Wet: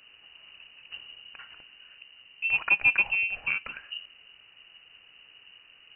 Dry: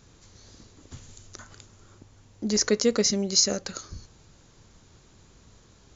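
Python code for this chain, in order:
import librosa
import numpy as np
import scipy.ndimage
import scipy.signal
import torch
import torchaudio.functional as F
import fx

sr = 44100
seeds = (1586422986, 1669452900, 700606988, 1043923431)

y = fx.freq_invert(x, sr, carrier_hz=2900)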